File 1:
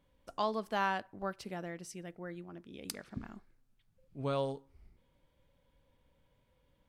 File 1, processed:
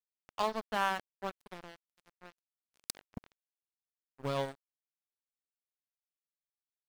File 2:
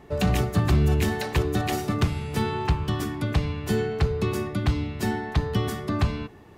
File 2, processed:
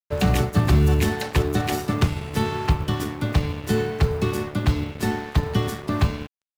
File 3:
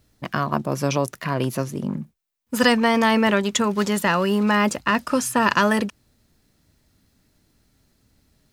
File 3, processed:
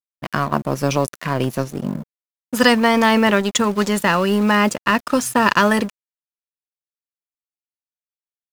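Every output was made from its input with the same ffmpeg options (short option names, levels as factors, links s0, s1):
-af "aeval=exprs='sgn(val(0))*max(abs(val(0))-0.0141,0)':c=same,acrusher=bits=8:mode=log:mix=0:aa=0.000001,volume=1.58"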